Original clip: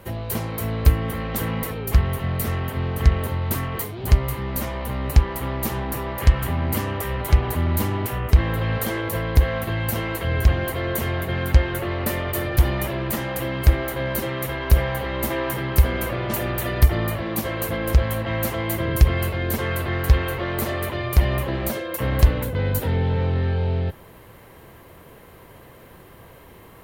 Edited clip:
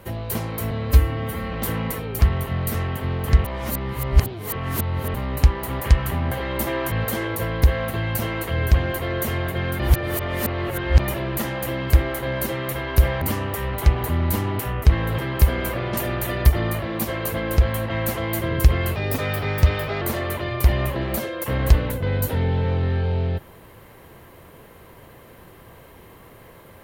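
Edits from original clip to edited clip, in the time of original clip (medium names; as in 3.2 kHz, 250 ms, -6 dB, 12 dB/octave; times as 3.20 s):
0.71–1.26 s: stretch 1.5×
3.17–4.87 s: reverse
5.53–6.17 s: delete
6.68–8.65 s: swap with 14.95–15.55 s
11.53–12.73 s: reverse
19.32–20.54 s: speed 115%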